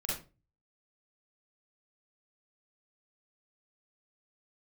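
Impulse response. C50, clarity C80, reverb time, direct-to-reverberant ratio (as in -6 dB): 1.0 dB, 9.0 dB, 0.30 s, -6.5 dB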